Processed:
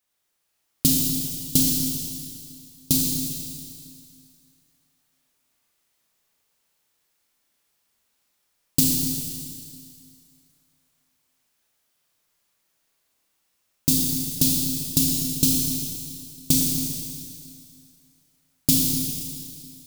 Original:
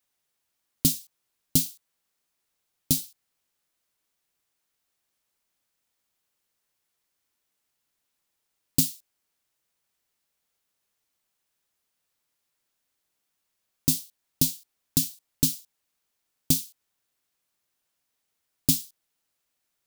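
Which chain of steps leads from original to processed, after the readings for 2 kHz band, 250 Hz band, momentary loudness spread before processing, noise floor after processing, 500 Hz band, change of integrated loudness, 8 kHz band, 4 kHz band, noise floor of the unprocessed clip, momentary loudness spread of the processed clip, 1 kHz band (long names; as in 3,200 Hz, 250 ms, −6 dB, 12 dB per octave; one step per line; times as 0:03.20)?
+6.0 dB, +7.5 dB, 10 LU, −73 dBFS, +6.0 dB, +4.0 dB, +6.5 dB, +6.5 dB, −80 dBFS, 18 LU, can't be measured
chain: automatic gain control gain up to 3 dB
four-comb reverb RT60 2.3 s, combs from 27 ms, DRR −2.5 dB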